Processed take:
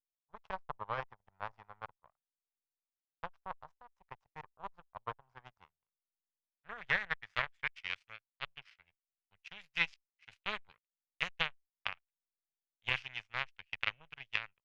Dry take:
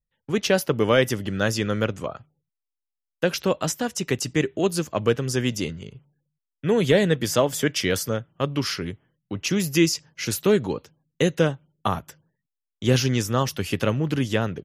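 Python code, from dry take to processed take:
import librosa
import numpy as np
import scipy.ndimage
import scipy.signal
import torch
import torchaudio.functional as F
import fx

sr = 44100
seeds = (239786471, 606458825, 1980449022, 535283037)

y = fx.power_curve(x, sr, exponent=3.0)
y = fx.tone_stack(y, sr, knobs='10-0-10')
y = fx.filter_sweep_lowpass(y, sr, from_hz=950.0, to_hz=2500.0, start_s=5.19, end_s=7.93, q=2.6)
y = y * librosa.db_to_amplitude(-1.0)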